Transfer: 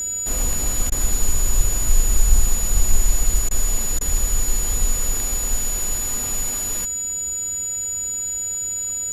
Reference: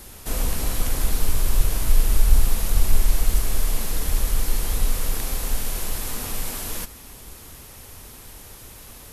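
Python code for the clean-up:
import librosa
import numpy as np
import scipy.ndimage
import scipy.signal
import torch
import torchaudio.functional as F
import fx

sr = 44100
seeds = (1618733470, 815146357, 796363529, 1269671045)

y = fx.notch(x, sr, hz=6900.0, q=30.0)
y = fx.fix_interpolate(y, sr, at_s=(0.9, 3.49, 3.99), length_ms=18.0)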